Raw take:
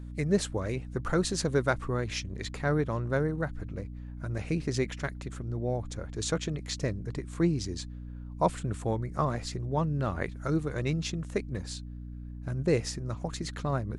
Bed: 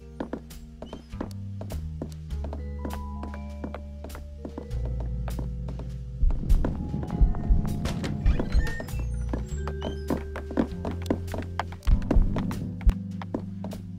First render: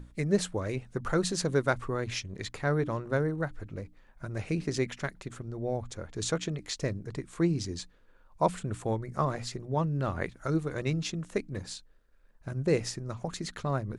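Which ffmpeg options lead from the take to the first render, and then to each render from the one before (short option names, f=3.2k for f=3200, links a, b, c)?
-af "bandreject=f=60:t=h:w=6,bandreject=f=120:t=h:w=6,bandreject=f=180:t=h:w=6,bandreject=f=240:t=h:w=6,bandreject=f=300:t=h:w=6"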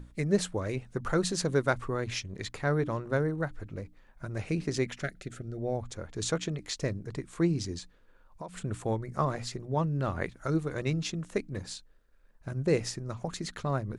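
-filter_complex "[0:a]asettb=1/sr,asplit=3[a][b][c];[a]atrim=end=5.034[d];[b]atrim=start=5.03:end=5.59,asetpts=PTS-STARTPTS,afade=t=in:d=0.004:c=qsin,afade=t=out:st=0.556:d=0.004:c=qsin,asuperstop=centerf=980:order=8:qfactor=2[e];[c]atrim=start=5.586[f];[d][e]acrossfade=d=0.004:c1=hsin:c2=qsin[g];[g][f]acrossfade=d=0.004:c1=qsin:c2=hsin,asettb=1/sr,asplit=3[h][i][j];[h]atrim=end=7.784[k];[i]atrim=start=7.78:end=8.57,asetpts=PTS-STARTPTS,afade=t=in:d=0.004:c=qsin,afade=t=out:st=0.786:d=0.004:c=qsin,acompressor=threshold=-38dB:ratio=6:attack=3.2:release=140:knee=1:detection=peak[l];[j]atrim=start=8.566[m];[k][l]acrossfade=d=0.004:c1=hsin:c2=qsin[n];[n][m]acrossfade=d=0.004:c1=qsin:c2=hsin"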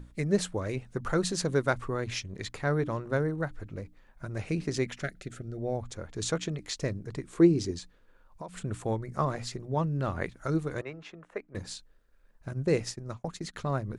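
-filter_complex "[0:a]asettb=1/sr,asplit=3[a][b][c];[a]atrim=end=7.254[d];[b]atrim=start=7.25:end=7.71,asetpts=PTS-STARTPTS,afade=t=in:d=0.004:c=qsin,afade=t=out:st=0.456:d=0.004:c=qsin,equalizer=f=380:w=1.5:g=9.5[e];[c]atrim=start=7.706[f];[d][e]acrossfade=d=0.004:c1=hsin:c2=qsin[g];[g][f]acrossfade=d=0.004:c1=qsin:c2=hsin,asettb=1/sr,asplit=3[h][i][j];[h]atrim=end=10.814[k];[i]atrim=start=10.81:end=11.55,asetpts=PTS-STARTPTS,afade=t=in:d=0.004:c=qsin,afade=t=out:st=0.736:d=0.004:c=qsin,acrossover=split=440 2300:gain=0.126 1 0.0794[l][m][n];[l][m][n]amix=inputs=3:normalize=0[o];[j]atrim=start=11.546[p];[k][o]acrossfade=d=0.004:c1=hsin:c2=qsin[q];[q][p]acrossfade=d=0.004:c1=qsin:c2=hsin,asplit=3[r][s][t];[r]afade=t=out:st=12.49:d=0.02[u];[s]agate=range=-33dB:threshold=-35dB:ratio=3:release=100:detection=peak,afade=t=in:st=12.49:d=0.02,afade=t=out:st=13.53:d=0.02[v];[t]afade=t=in:st=13.53:d=0.02[w];[u][v][w]amix=inputs=3:normalize=0"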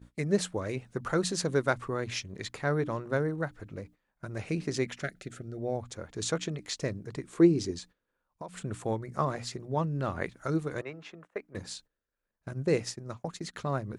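-af "highpass=f=110:p=1,agate=range=-15dB:threshold=-52dB:ratio=16:detection=peak"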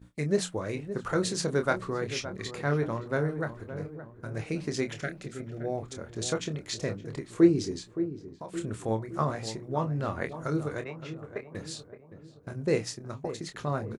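-filter_complex "[0:a]asplit=2[a][b];[b]adelay=27,volume=-8dB[c];[a][c]amix=inputs=2:normalize=0,asplit=2[d][e];[e]adelay=568,lowpass=f=1k:p=1,volume=-10.5dB,asplit=2[f][g];[g]adelay=568,lowpass=f=1k:p=1,volume=0.54,asplit=2[h][i];[i]adelay=568,lowpass=f=1k:p=1,volume=0.54,asplit=2[j][k];[k]adelay=568,lowpass=f=1k:p=1,volume=0.54,asplit=2[l][m];[m]adelay=568,lowpass=f=1k:p=1,volume=0.54,asplit=2[n][o];[o]adelay=568,lowpass=f=1k:p=1,volume=0.54[p];[f][h][j][l][n][p]amix=inputs=6:normalize=0[q];[d][q]amix=inputs=2:normalize=0"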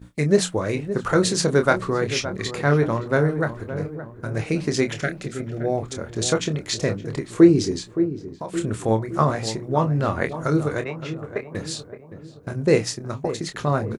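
-af "volume=9dB,alimiter=limit=-3dB:level=0:latency=1"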